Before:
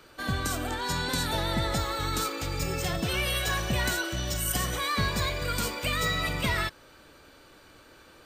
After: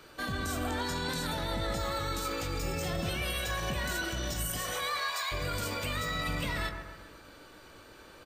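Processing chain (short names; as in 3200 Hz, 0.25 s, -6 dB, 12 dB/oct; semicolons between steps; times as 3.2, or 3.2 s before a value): 4.58–5.31 HPF 370 Hz -> 870 Hz 24 dB/oct; limiter -26 dBFS, peak gain reduction 11 dB; doubler 20 ms -11 dB; dark delay 0.133 s, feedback 47%, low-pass 1700 Hz, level -5.5 dB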